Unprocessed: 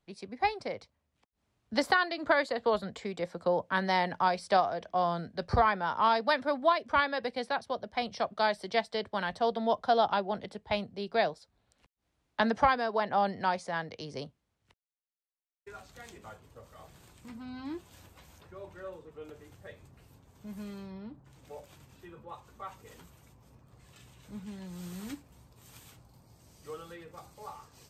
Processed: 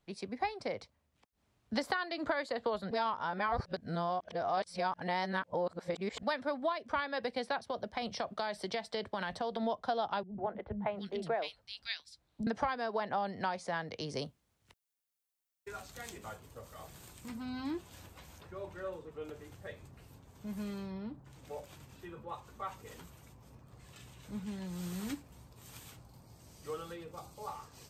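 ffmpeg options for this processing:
ffmpeg -i in.wav -filter_complex "[0:a]asettb=1/sr,asplit=3[link_01][link_02][link_03];[link_01]atrim=end=7.594[link_04];[link_02]atrim=start=7.59:end=9.63,asetpts=PTS-STARTPTS,afade=type=in:duration=0.004:curve=qsin,afade=type=out:start_time=2.036:duration=0.004:curve=qsin,acompressor=threshold=-32dB:ratio=6:attack=3.2:release=140:knee=1:detection=peak[link_05];[link_03]atrim=start=9.626[link_06];[link_04][link_05]acrossfade=duration=0.004:curve1=hsin:curve2=qsin[link_07];[link_07][link_06]acrossfade=duration=0.004:curve1=qsin:curve2=hsin,asettb=1/sr,asplit=3[link_08][link_09][link_10];[link_08]atrim=end=10.234[link_11];[link_09]atrim=start=10.23:end=12.47,asetpts=PTS-STARTPTS,afade=type=in:duration=0.004:curve=qsin,afade=type=out:start_time=2.236:duration=0.004:curve=qsin,acrossover=split=250|2100[link_12][link_13][link_14];[link_13]adelay=150[link_15];[link_14]adelay=710[link_16];[link_12][link_15][link_16]amix=inputs=3:normalize=0,atrim=end_sample=98784[link_17];[link_10]atrim=start=12.466[link_18];[link_11][link_17]acrossfade=duration=0.004:curve1=hsin:curve2=qsin[link_19];[link_19][link_18]acrossfade=duration=0.004:curve1=qsin:curve2=hsin,asettb=1/sr,asplit=3[link_20][link_21][link_22];[link_20]atrim=end=14.094[link_23];[link_21]atrim=start=14.09:end=17.71,asetpts=PTS-STARTPTS,afade=type=in:duration=0.004:curve=qsin,afade=type=out:start_time=3.616:duration=0.004:curve=qsin,highshelf=frequency=6400:gain=8[link_24];[link_22]atrim=start=17.706[link_25];[link_23][link_24]acrossfade=duration=0.004:curve1=hsin:curve2=qsin[link_26];[link_26][link_25]acrossfade=duration=0.004:curve1=qsin:curve2=hsin,asettb=1/sr,asplit=3[link_27][link_28][link_29];[link_27]atrim=end=26.934[link_30];[link_28]atrim=start=26.93:end=27.48,asetpts=PTS-STARTPTS,afade=type=in:duration=0.004:curve=qsin,afade=type=out:start_time=0.546:duration=0.004:curve=qsin,equalizer=frequency=1800:width_type=o:width=0.55:gain=-8.5[link_31];[link_29]atrim=start=27.476[link_32];[link_30][link_31]acrossfade=duration=0.004:curve1=hsin:curve2=qsin[link_33];[link_33][link_32]acrossfade=duration=0.004:curve1=qsin:curve2=hsin,asplit=3[link_34][link_35][link_36];[link_34]atrim=end=2.912[link_37];[link_35]atrim=start=2.908:end=6.232,asetpts=PTS-STARTPTS,areverse[link_38];[link_36]atrim=start=6.228[link_39];[link_37][link_38]acrossfade=duration=0.004:curve1=hsin:curve2=hsin[link_40];[link_40][link_39]acrossfade=duration=0.004:curve1=hsin:curve2=hsin,acompressor=threshold=-34dB:ratio=4,volume=2dB" out.wav

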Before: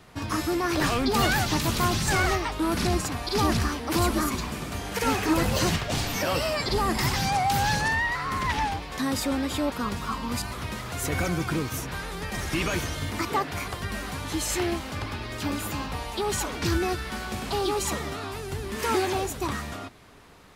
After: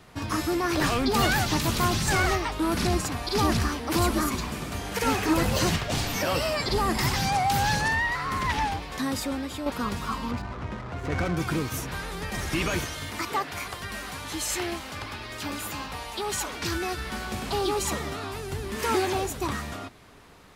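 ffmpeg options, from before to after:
ffmpeg -i in.wav -filter_complex "[0:a]asettb=1/sr,asplit=3[link_01][link_02][link_03];[link_01]atrim=end=10.314[link_04];[link_02]atrim=start=10.31:end=11.37,asetpts=PTS-STARTPTS,afade=type=in:duration=0.004:curve=qsin,afade=type=out:start_time=1.056:duration=0.004:curve=qsin,adynamicsmooth=sensitivity=4:basefreq=670[link_05];[link_03]atrim=start=11.366[link_06];[link_04][link_05]acrossfade=duration=0.004:curve1=hsin:curve2=qsin[link_07];[link_07][link_06]acrossfade=duration=0.004:curve1=qsin:curve2=hsin,asettb=1/sr,asplit=3[link_08][link_09][link_10];[link_08]atrim=end=12.844[link_11];[link_09]atrim=start=12.84:end=16.97,asetpts=PTS-STARTPTS,afade=type=in:duration=0.004:curve=qsin,afade=type=out:start_time=4.126:duration=0.004:curve=qsin,lowshelf=frequency=490:gain=-7.5[link_12];[link_10]atrim=start=16.966[link_13];[link_11][link_12]acrossfade=duration=0.004:curve1=hsin:curve2=qsin[link_14];[link_14][link_13]acrossfade=duration=0.004:curve1=qsin:curve2=hsin,asplit=2[link_15][link_16];[link_15]atrim=end=9.66,asetpts=PTS-STARTPTS,afade=type=out:start_time=8.87:duration=0.79:silence=0.421697[link_17];[link_16]atrim=start=9.66,asetpts=PTS-STARTPTS,afade=type=in:duration=0.004:curve=hsin:silence=0.421697[link_18];[link_17][link_18]concat=n=2:v=0:a=1" out.wav

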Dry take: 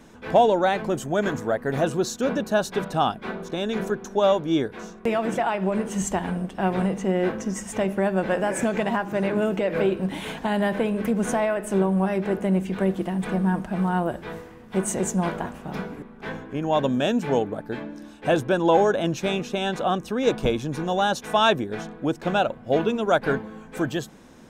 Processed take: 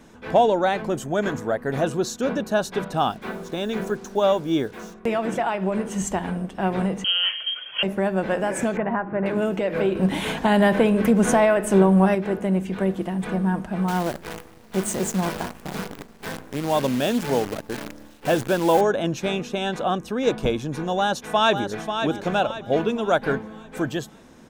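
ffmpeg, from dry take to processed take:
ffmpeg -i in.wav -filter_complex "[0:a]asettb=1/sr,asplit=3[link_01][link_02][link_03];[link_01]atrim=end=2.974[link_04];[link_02]atrim=start=2.97:end=4.94,asetpts=PTS-STARTPTS,afade=type=in:duration=0.004:curve=qsin,afade=type=out:start_time=1.966:duration=0.004:curve=qsin,acrusher=bits=7:mix=0:aa=0.5[link_05];[link_03]atrim=start=4.936[link_06];[link_04][link_05]acrossfade=duration=0.004:curve1=hsin:curve2=qsin[link_07];[link_07][link_06]acrossfade=duration=0.004:curve1=qsin:curve2=hsin,asettb=1/sr,asplit=3[link_08][link_09][link_10];[link_08]atrim=end=7.044[link_11];[link_09]atrim=start=7.04:end=7.83,asetpts=PTS-STARTPTS,afade=type=in:duration=0.004:curve=qsin,afade=type=out:start_time=0.786:duration=0.004:curve=qsin,lowpass=frequency=2900:width_type=q:width=0.5098,lowpass=frequency=2900:width_type=q:width=0.6013,lowpass=frequency=2900:width_type=q:width=0.9,lowpass=frequency=2900:width_type=q:width=2.563,afreqshift=-3400[link_12];[link_10]atrim=start=7.826[link_13];[link_11][link_12]acrossfade=duration=0.004:curve1=hsin:curve2=qsin[link_14];[link_14][link_13]acrossfade=duration=0.004:curve1=qsin:curve2=hsin,asettb=1/sr,asplit=3[link_15][link_16][link_17];[link_15]atrim=end=8.774[link_18];[link_16]atrim=start=8.77:end=9.26,asetpts=PTS-STARTPTS,afade=type=in:duration=0.004:curve=qsin,afade=type=out:start_time=0.486:duration=0.004:curve=qsin,lowpass=frequency=2000:width=0.5412,lowpass=frequency=2000:width=1.3066[link_19];[link_17]atrim=start=9.256[link_20];[link_18][link_19]acrossfade=duration=0.004:curve1=hsin:curve2=qsin[link_21];[link_21][link_20]acrossfade=duration=0.004:curve1=qsin:curve2=hsin,asettb=1/sr,asplit=3[link_22][link_23][link_24];[link_22]atrim=end=9.954[link_25];[link_23]atrim=start=9.95:end=12.15,asetpts=PTS-STARTPTS,afade=type=in:duration=0.004:curve=qsin,afade=type=out:start_time=2.196:duration=0.004:curve=qsin,acontrast=55[link_26];[link_24]atrim=start=12.146[link_27];[link_25][link_26]acrossfade=duration=0.004:curve1=hsin:curve2=qsin[link_28];[link_28][link_27]acrossfade=duration=0.004:curve1=qsin:curve2=hsin,asettb=1/sr,asplit=3[link_29][link_30][link_31];[link_29]atrim=end=13.884[link_32];[link_30]atrim=start=13.88:end=18.81,asetpts=PTS-STARTPTS,afade=type=in:duration=0.004:curve=qsin,afade=type=out:start_time=4.926:duration=0.004:curve=qsin,acrusher=bits=6:dc=4:mix=0:aa=0.000001[link_33];[link_31]atrim=start=18.806[link_34];[link_32][link_33]acrossfade=duration=0.004:curve1=hsin:curve2=qsin[link_35];[link_35][link_34]acrossfade=duration=0.004:curve1=qsin:curve2=hsin,asplit=2[link_36][link_37];[link_37]afade=type=in:start_time=20.98:duration=0.01,afade=type=out:start_time=22.03:duration=0.01,aecho=0:1:540|1080|1620|2160|2700:0.421697|0.168679|0.0674714|0.0269886|0.0107954[link_38];[link_36][link_38]amix=inputs=2:normalize=0" out.wav

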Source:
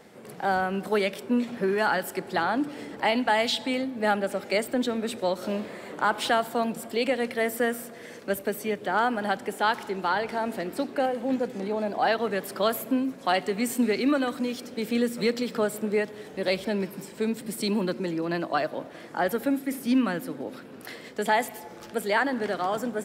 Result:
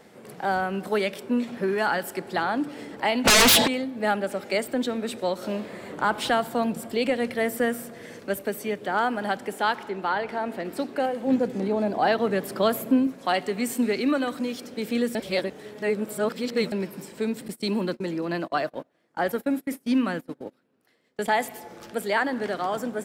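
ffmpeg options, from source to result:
ffmpeg -i in.wav -filter_complex "[0:a]asplit=3[link_01][link_02][link_03];[link_01]afade=type=out:start_time=3.24:duration=0.02[link_04];[link_02]aeval=exprs='0.237*sin(PI/2*6.31*val(0)/0.237)':channel_layout=same,afade=type=in:start_time=3.24:duration=0.02,afade=type=out:start_time=3.66:duration=0.02[link_05];[link_03]afade=type=in:start_time=3.66:duration=0.02[link_06];[link_04][link_05][link_06]amix=inputs=3:normalize=0,asettb=1/sr,asplit=3[link_07][link_08][link_09];[link_07]atrim=end=5.734[link_10];[link_08]atrim=start=5.73:end=8.26,asetpts=PTS-STARTPTS,afade=type=in:duration=0.004:curve=qsin,afade=type=out:start_time=2.526:duration=0.004:curve=qsin,lowshelf=frequency=150:gain=11[link_11];[link_09]atrim=start=8.256[link_12];[link_10][link_11]acrossfade=duration=0.004:curve1=hsin:curve2=qsin[link_13];[link_13][link_12]acrossfade=duration=0.004:curve1=qsin:curve2=hsin,asettb=1/sr,asplit=3[link_14][link_15][link_16];[link_14]atrim=end=9.734[link_17];[link_15]atrim=start=9.73:end=10.65,asetpts=PTS-STARTPTS,afade=type=in:duration=0.004:curve=qsin,afade=type=out:start_time=0.916:duration=0.004:curve=qsin,bass=frequency=250:gain=-2,treble=frequency=4000:gain=-8[link_18];[link_16]atrim=start=10.646[link_19];[link_17][link_18]acrossfade=duration=0.004:curve1=hsin:curve2=qsin[link_20];[link_20][link_19]acrossfade=duration=0.004:curve1=qsin:curve2=hsin,asettb=1/sr,asplit=3[link_21][link_22][link_23];[link_21]atrim=end=11.274[link_24];[link_22]atrim=start=11.27:end=13.07,asetpts=PTS-STARTPTS,afade=type=in:duration=0.004:curve=qsin,afade=type=out:start_time=1.796:duration=0.004:curve=qsin,lowshelf=frequency=440:gain=7[link_25];[link_23]atrim=start=13.066[link_26];[link_24][link_25]acrossfade=duration=0.004:curve1=hsin:curve2=qsin[link_27];[link_27][link_26]acrossfade=duration=0.004:curve1=qsin:curve2=hsin,asettb=1/sr,asplit=3[link_28][link_29][link_30];[link_28]atrim=end=17.484[link_31];[link_29]atrim=start=17.48:end=21.39,asetpts=PTS-STARTPTS,afade=type=in:duration=0.004:curve=qsin,afade=type=out:start_time=3.906:duration=0.004:curve=qsin,agate=range=-26dB:threshold=-34dB:ratio=16:release=100:detection=peak[link_32];[link_30]atrim=start=21.386[link_33];[link_31][link_32]acrossfade=duration=0.004:curve1=hsin:curve2=qsin[link_34];[link_34][link_33]acrossfade=duration=0.004:curve1=qsin:curve2=hsin,asplit=3[link_35][link_36][link_37];[link_35]atrim=end=15.152[link_38];[link_36]atrim=start=15.148:end=16.722,asetpts=PTS-STARTPTS,areverse[link_39];[link_37]atrim=start=16.718[link_40];[link_38][link_39]acrossfade=duration=0.004:curve1=hsin:curve2=hsin[link_41];[link_41][link_40]acrossfade=duration=0.004:curve1=hsin:curve2=hsin" out.wav

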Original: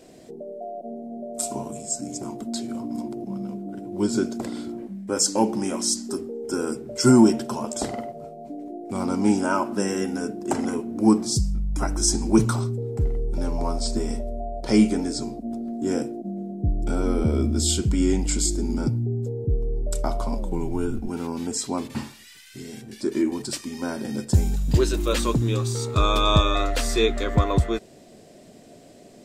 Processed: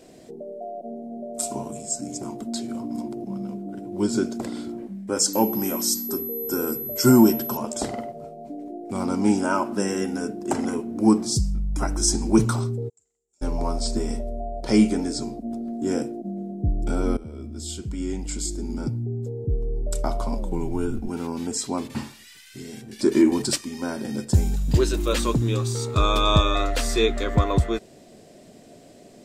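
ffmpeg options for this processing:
ffmpeg -i in.wav -filter_complex "[0:a]asettb=1/sr,asplit=3[link_01][link_02][link_03];[link_01]atrim=end=5.334[link_04];[link_02]atrim=start=5.33:end=7.57,asetpts=PTS-STARTPTS,afade=type=in:duration=0.004:curve=qsin,afade=type=out:start_time=2.236:duration=0.004:curve=qsin,aeval=exprs='val(0)+0.0316*sin(2*PI*12000*n/s)':channel_layout=same[link_05];[link_03]atrim=start=7.566[link_06];[link_04][link_05]acrossfade=duration=0.004:curve1=hsin:curve2=qsin[link_07];[link_07][link_06]acrossfade=duration=0.004:curve1=qsin:curve2=hsin,asplit=3[link_08][link_09][link_10];[link_08]afade=type=out:start_time=12.88:duration=0.02[link_11];[link_09]bandpass=frequency=7300:width_type=q:width=12,afade=type=in:start_time=12.88:duration=0.02,afade=type=out:start_time=13.41:duration=0.02[link_12];[link_10]afade=type=in:start_time=13.41:duration=0.02[link_13];[link_11][link_12][link_13]amix=inputs=3:normalize=0,asettb=1/sr,asplit=3[link_14][link_15][link_16];[link_14]atrim=end=22.994[link_17];[link_15]atrim=start=22.99:end=23.56,asetpts=PTS-STARTPTS,afade=type=in:duration=0.004:curve=qsin,afade=type=out:start_time=0.566:duration=0.004:curve=qsin,acontrast=57[link_18];[link_16]atrim=start=23.556[link_19];[link_17][link_18]acrossfade=duration=0.004:curve1=hsin:curve2=qsin[link_20];[link_20][link_19]acrossfade=duration=0.004:curve1=qsin:curve2=hsin,asplit=2[link_21][link_22];[link_21]atrim=end=17.17,asetpts=PTS-STARTPTS,afade=type=out:start_time=17.166:duration=0.004:curve=hsin:silence=0.11885[link_23];[link_22]atrim=start=17.17,asetpts=PTS-STARTPTS,afade=type=in:duration=2.82:silence=0.11885[link_24];[link_23][link_24]concat=n=2:v=0:a=1" out.wav

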